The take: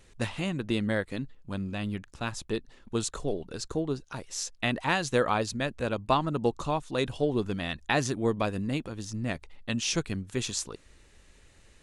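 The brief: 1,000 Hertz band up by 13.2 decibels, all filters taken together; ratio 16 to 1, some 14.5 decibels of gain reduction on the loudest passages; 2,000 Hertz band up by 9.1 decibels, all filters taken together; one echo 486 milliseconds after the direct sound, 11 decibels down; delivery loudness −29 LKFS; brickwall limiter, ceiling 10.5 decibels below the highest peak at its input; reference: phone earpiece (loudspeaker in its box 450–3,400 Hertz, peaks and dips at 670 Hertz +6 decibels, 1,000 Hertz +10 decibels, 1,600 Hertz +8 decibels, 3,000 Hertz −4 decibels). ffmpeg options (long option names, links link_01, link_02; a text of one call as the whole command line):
ffmpeg -i in.wav -af "equalizer=frequency=1000:width_type=o:gain=6.5,equalizer=frequency=2000:width_type=o:gain=3,acompressor=threshold=-29dB:ratio=16,alimiter=limit=-23.5dB:level=0:latency=1,highpass=450,equalizer=frequency=670:width_type=q:width=4:gain=6,equalizer=frequency=1000:width_type=q:width=4:gain=10,equalizer=frequency=1600:width_type=q:width=4:gain=8,equalizer=frequency=3000:width_type=q:width=4:gain=-4,lowpass=frequency=3400:width=0.5412,lowpass=frequency=3400:width=1.3066,aecho=1:1:486:0.282,volume=6.5dB" out.wav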